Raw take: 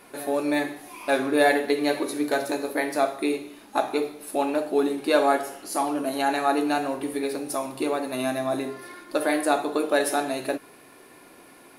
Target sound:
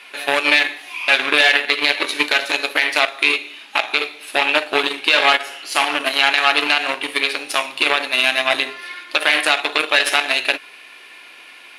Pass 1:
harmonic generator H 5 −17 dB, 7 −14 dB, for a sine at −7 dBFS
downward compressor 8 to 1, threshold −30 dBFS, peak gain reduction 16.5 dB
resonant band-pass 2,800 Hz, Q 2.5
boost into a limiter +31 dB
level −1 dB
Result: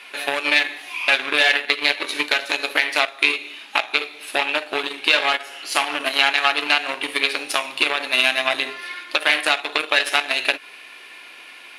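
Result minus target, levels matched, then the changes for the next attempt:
downward compressor: peak gain reduction +6.5 dB
change: downward compressor 8 to 1, threshold −22.5 dBFS, peak gain reduction 10 dB

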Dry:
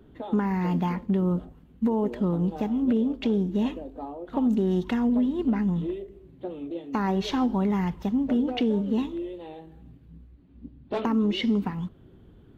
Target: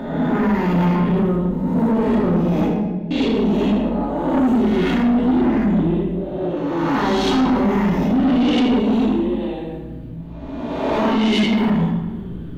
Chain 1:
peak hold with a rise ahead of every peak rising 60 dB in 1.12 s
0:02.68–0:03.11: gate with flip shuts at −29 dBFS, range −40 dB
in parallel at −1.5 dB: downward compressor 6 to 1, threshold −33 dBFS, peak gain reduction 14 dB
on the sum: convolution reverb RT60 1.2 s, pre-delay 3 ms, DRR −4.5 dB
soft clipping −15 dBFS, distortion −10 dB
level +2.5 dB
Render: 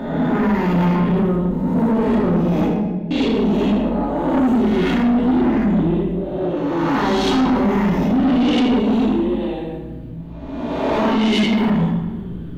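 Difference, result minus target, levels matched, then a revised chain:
downward compressor: peak gain reduction −7 dB
peak hold with a rise ahead of every peak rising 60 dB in 1.12 s
0:02.68–0:03.11: gate with flip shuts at −29 dBFS, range −40 dB
in parallel at −1.5 dB: downward compressor 6 to 1, threshold −41.5 dBFS, peak gain reduction 21 dB
on the sum: convolution reverb RT60 1.2 s, pre-delay 3 ms, DRR −4.5 dB
soft clipping −15 dBFS, distortion −11 dB
level +2.5 dB

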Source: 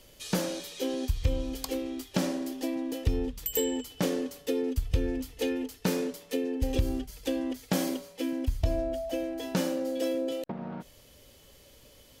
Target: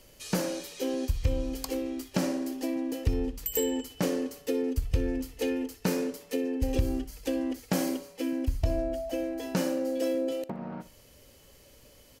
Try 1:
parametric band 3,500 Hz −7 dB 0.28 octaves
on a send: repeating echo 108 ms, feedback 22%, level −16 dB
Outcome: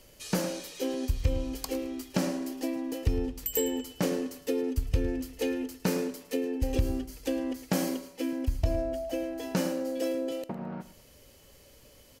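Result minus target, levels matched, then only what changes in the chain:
echo 47 ms late
change: repeating echo 61 ms, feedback 22%, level −16 dB

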